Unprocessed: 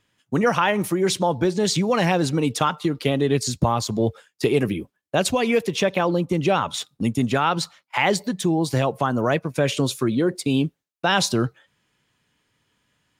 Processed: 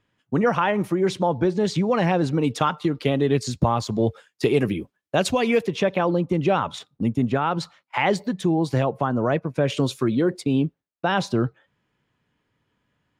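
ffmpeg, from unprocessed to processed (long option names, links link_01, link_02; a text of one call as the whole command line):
ffmpeg -i in.wav -af "asetnsamples=nb_out_samples=441:pad=0,asendcmd='2.44 lowpass f 3200;3.99 lowpass f 5600;5.66 lowpass f 2100;6.79 lowpass f 1100;7.6 lowpass f 2300;8.83 lowpass f 1300;9.7 lowpass f 3400;10.44 lowpass f 1300',lowpass=frequency=1700:poles=1" out.wav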